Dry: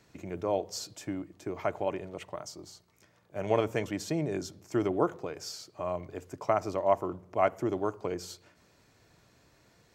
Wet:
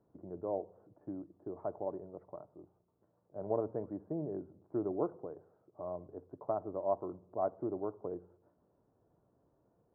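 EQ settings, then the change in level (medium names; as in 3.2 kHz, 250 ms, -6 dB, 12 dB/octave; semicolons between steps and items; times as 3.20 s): Gaussian low-pass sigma 10 samples; bass shelf 210 Hz -10 dB; -2.5 dB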